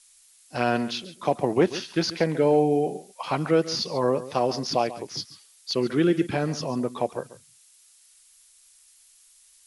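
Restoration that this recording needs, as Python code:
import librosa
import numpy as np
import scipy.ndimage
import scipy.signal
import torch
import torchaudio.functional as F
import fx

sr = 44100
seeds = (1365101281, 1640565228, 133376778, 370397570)

y = fx.noise_reduce(x, sr, print_start_s=7.65, print_end_s=8.15, reduce_db=12.0)
y = fx.fix_echo_inverse(y, sr, delay_ms=139, level_db=-15.5)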